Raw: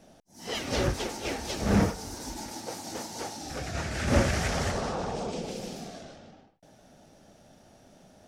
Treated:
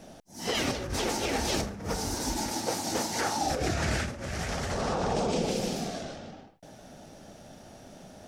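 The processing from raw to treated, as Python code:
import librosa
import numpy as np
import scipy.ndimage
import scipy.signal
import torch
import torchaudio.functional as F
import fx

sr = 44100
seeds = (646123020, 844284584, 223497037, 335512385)

y = fx.peak_eq(x, sr, hz=fx.line((3.12, 2300.0), (3.7, 330.0)), db=10.5, octaves=0.7, at=(3.12, 3.7), fade=0.02)
y = fx.over_compress(y, sr, threshold_db=-34.0, ratio=-1.0)
y = y * librosa.db_to_amplitude(3.5)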